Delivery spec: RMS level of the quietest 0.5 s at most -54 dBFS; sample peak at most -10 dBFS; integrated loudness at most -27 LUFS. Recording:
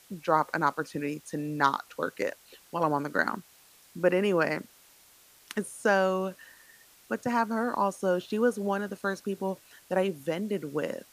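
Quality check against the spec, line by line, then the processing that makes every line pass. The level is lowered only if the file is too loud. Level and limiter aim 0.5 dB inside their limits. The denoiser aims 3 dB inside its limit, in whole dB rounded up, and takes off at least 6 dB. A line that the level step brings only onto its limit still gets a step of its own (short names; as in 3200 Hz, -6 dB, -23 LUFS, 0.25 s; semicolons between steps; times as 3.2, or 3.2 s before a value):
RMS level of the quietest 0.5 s -58 dBFS: OK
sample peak -8.5 dBFS: fail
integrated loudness -29.5 LUFS: OK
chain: limiter -10.5 dBFS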